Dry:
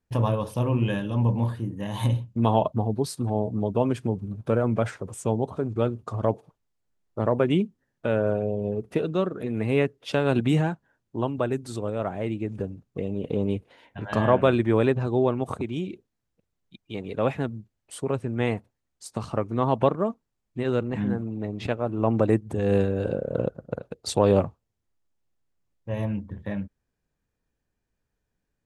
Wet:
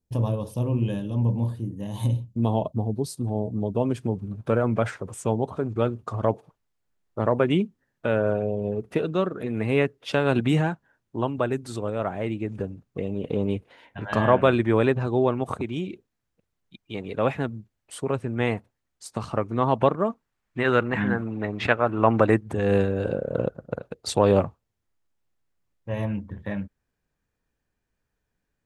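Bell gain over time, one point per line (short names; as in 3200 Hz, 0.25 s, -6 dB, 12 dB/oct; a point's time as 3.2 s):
bell 1600 Hz 2 oct
3.2 s -12 dB
3.96 s -4 dB
4.23 s +3.5 dB
19.97 s +3.5 dB
20.58 s +15 dB
21.97 s +15 dB
22.9 s +3.5 dB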